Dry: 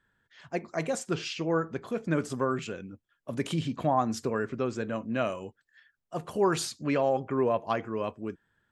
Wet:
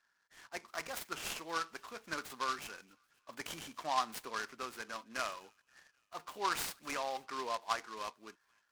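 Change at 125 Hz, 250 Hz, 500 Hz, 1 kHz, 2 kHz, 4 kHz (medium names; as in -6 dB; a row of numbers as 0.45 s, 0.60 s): -26.0 dB, -20.5 dB, -16.5 dB, -5.0 dB, -3.0 dB, -2.5 dB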